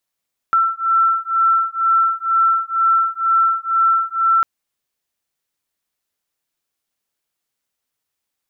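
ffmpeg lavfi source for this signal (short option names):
-f lavfi -i "aevalsrc='0.15*(sin(2*PI*1340*t)+sin(2*PI*1342.1*t))':d=3.9:s=44100"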